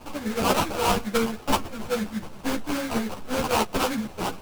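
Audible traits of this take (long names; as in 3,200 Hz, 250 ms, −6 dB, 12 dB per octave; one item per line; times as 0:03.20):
a quantiser's noise floor 8 bits, dither triangular
phaser sweep stages 6, 3.7 Hz, lowest notch 490–4,500 Hz
aliases and images of a low sample rate 1,900 Hz, jitter 20%
a shimmering, thickened sound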